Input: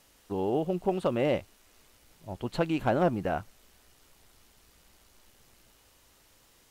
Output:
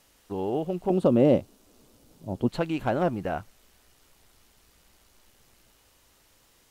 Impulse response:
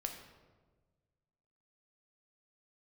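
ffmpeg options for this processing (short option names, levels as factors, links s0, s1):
-filter_complex "[0:a]asettb=1/sr,asplit=3[s0][s1][s2];[s0]atrim=end=0.904[s3];[s1]atrim=start=0.9:end=2.49,asetpts=PTS-STARTPTS,afade=t=in:d=0.004:c=qsin,afade=t=out:st=1.586:d=0.004:c=qsin,equalizer=f=125:t=o:w=1:g=6,equalizer=f=250:t=o:w=1:g=10,equalizer=f=500:t=o:w=1:g=5,equalizer=f=2000:t=o:w=1:g=-7[s4];[s2]atrim=start=2.486[s5];[s3][s4]acrossfade=d=0.004:c1=hsin:c2=qsin[s6];[s6][s5]acrossfade=d=0.004:c1=qsin:c2=hsin"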